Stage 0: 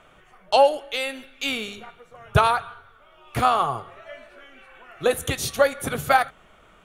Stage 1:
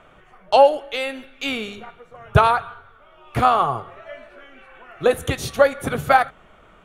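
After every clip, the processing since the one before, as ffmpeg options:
ffmpeg -i in.wav -af "highshelf=frequency=3400:gain=-9.5,volume=4dB" out.wav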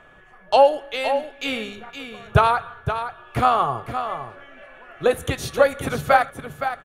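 ffmpeg -i in.wav -filter_complex "[0:a]aeval=exprs='val(0)+0.00282*sin(2*PI*1700*n/s)':channel_layout=same,asplit=2[link_01][link_02];[link_02]aecho=0:1:517:0.355[link_03];[link_01][link_03]amix=inputs=2:normalize=0,volume=-1.5dB" out.wav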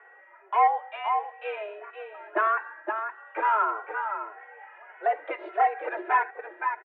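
ffmpeg -i in.wav -filter_complex "[0:a]asoftclip=type=tanh:threshold=-15dB,highpass=frequency=170:width_type=q:width=0.5412,highpass=frequency=170:width_type=q:width=1.307,lowpass=frequency=2100:width_type=q:width=0.5176,lowpass=frequency=2100:width_type=q:width=0.7071,lowpass=frequency=2100:width_type=q:width=1.932,afreqshift=210,asplit=2[link_01][link_02];[link_02]adelay=2.3,afreqshift=1.6[link_03];[link_01][link_03]amix=inputs=2:normalize=1" out.wav

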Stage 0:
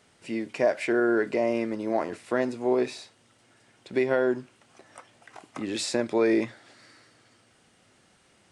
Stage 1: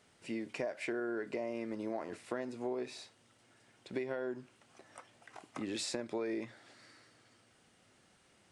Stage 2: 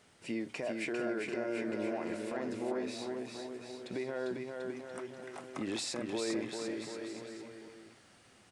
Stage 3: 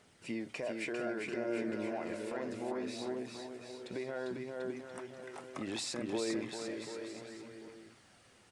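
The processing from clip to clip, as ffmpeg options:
ffmpeg -i in.wav -af "acompressor=threshold=-29dB:ratio=6,volume=-5.5dB" out.wav
ffmpeg -i in.wav -filter_complex "[0:a]alimiter=level_in=7dB:limit=-24dB:level=0:latency=1,volume=-7dB,asplit=2[link_01][link_02];[link_02]aecho=0:1:400|740|1029|1275|1483:0.631|0.398|0.251|0.158|0.1[link_03];[link_01][link_03]amix=inputs=2:normalize=0,volume=3dB" out.wav
ffmpeg -i in.wav -af "aphaser=in_gain=1:out_gain=1:delay=2.3:decay=0.25:speed=0.65:type=triangular,volume=-1.5dB" out.wav

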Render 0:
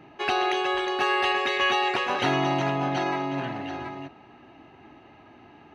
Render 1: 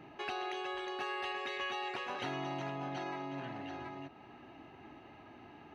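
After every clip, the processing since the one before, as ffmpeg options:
ffmpeg -i in.wav -af "acompressor=threshold=-42dB:ratio=2,volume=-3.5dB" out.wav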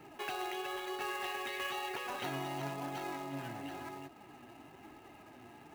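ffmpeg -i in.wav -filter_complex "[0:a]flanger=delay=2.2:depth=6.4:regen=56:speed=1:shape=sinusoidal,acrossover=split=540[link_01][link_02];[link_02]acrusher=bits=2:mode=log:mix=0:aa=0.000001[link_03];[link_01][link_03]amix=inputs=2:normalize=0,volume=3.5dB" out.wav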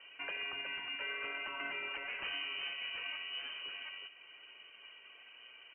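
ffmpeg -i in.wav -af "aecho=1:1:76:0.188,lowpass=frequency=2700:width_type=q:width=0.5098,lowpass=frequency=2700:width_type=q:width=0.6013,lowpass=frequency=2700:width_type=q:width=0.9,lowpass=frequency=2700:width_type=q:width=2.563,afreqshift=-3200,volume=-1.5dB" out.wav

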